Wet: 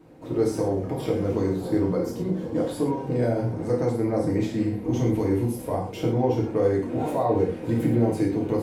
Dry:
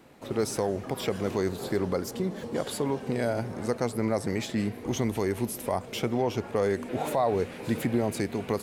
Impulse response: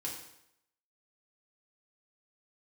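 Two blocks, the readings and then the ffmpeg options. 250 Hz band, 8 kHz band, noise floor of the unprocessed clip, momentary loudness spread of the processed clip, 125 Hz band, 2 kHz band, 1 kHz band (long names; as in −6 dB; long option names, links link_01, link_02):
+6.0 dB, −6.0 dB, −42 dBFS, 4 LU, +7.0 dB, −4.0 dB, +1.0 dB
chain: -filter_complex "[0:a]tiltshelf=frequency=850:gain=6.5[link_01];[1:a]atrim=start_sample=2205,atrim=end_sample=6174[link_02];[link_01][link_02]afir=irnorm=-1:irlink=0"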